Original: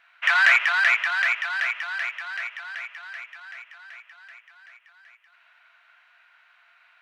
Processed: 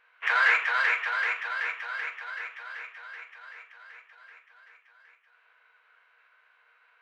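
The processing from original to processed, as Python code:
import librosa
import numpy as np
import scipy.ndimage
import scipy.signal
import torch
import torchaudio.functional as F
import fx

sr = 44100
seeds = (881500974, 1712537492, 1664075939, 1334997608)

y = fx.pitch_keep_formants(x, sr, semitones=-6.5)
y = fx.high_shelf(y, sr, hz=2200.0, db=-11.0)
y = fx.room_early_taps(y, sr, ms=(42, 75), db=(-10.0, -17.5))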